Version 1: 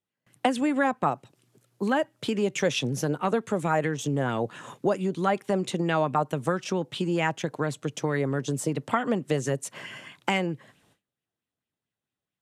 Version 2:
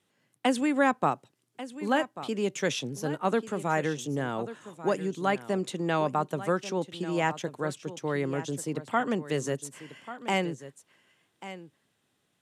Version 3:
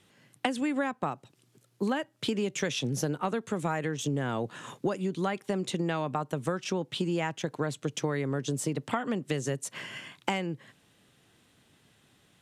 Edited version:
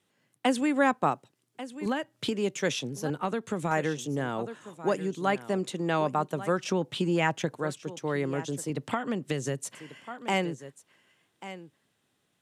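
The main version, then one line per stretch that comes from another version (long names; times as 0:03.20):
2
0:01.86–0:02.31: punch in from 3
0:03.10–0:03.71: punch in from 3
0:06.58–0:07.54: punch in from 1
0:08.70–0:09.75: punch in from 3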